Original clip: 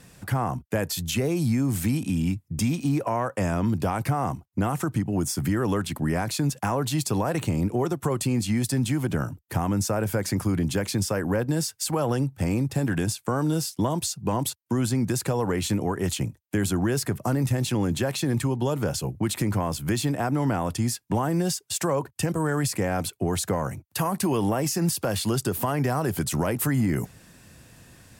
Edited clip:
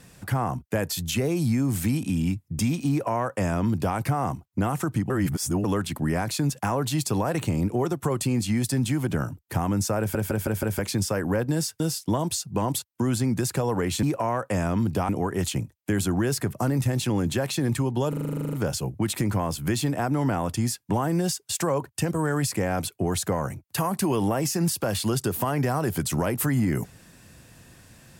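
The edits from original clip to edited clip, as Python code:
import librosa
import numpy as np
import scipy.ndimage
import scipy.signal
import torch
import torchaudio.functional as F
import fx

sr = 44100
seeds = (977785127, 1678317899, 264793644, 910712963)

y = fx.edit(x, sr, fx.duplicate(start_s=2.9, length_s=1.06, to_s=15.74),
    fx.reverse_span(start_s=5.1, length_s=0.54),
    fx.stutter_over(start_s=9.99, slice_s=0.16, count=5),
    fx.cut(start_s=11.8, length_s=1.71),
    fx.stutter(start_s=18.74, slice_s=0.04, count=12), tone=tone)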